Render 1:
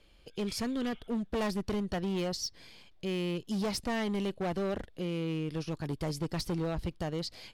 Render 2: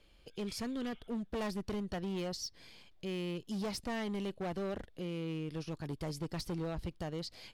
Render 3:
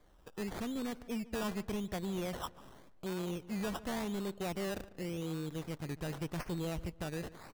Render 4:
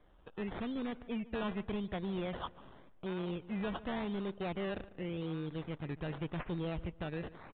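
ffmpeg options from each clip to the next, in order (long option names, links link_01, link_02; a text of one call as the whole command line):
ffmpeg -i in.wav -af "alimiter=level_in=6.5dB:limit=-24dB:level=0:latency=1:release=234,volume=-6.5dB,volume=-2.5dB" out.wav
ffmpeg -i in.wav -filter_complex "[0:a]acrusher=samples=16:mix=1:aa=0.000001:lfo=1:lforange=9.6:lforate=0.88,asplit=2[link_01][link_02];[link_02]adelay=147,lowpass=frequency=2800:poles=1,volume=-18dB,asplit=2[link_03][link_04];[link_04]adelay=147,lowpass=frequency=2800:poles=1,volume=0.35,asplit=2[link_05][link_06];[link_06]adelay=147,lowpass=frequency=2800:poles=1,volume=0.35[link_07];[link_01][link_03][link_05][link_07]amix=inputs=4:normalize=0" out.wav
ffmpeg -i in.wav -af "aresample=8000,aresample=44100" out.wav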